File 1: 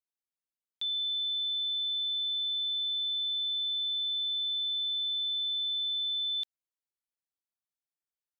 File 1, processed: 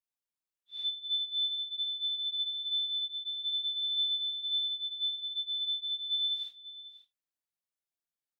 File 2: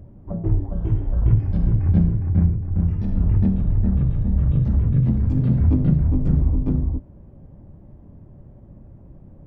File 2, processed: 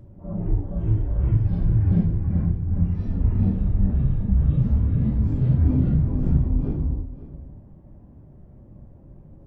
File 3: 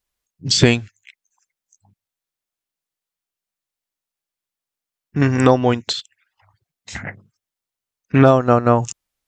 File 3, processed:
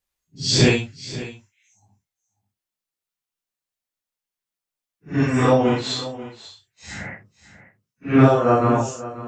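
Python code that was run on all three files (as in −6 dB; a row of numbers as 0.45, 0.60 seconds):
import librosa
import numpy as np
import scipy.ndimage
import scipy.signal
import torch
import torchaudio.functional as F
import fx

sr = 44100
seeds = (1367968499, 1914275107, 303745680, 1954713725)

p1 = fx.phase_scramble(x, sr, seeds[0], window_ms=200)
p2 = p1 + fx.echo_single(p1, sr, ms=540, db=-15.5, dry=0)
y = F.gain(torch.from_numpy(p2), -2.0).numpy()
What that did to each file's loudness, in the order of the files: −2.0, −2.0, −2.5 LU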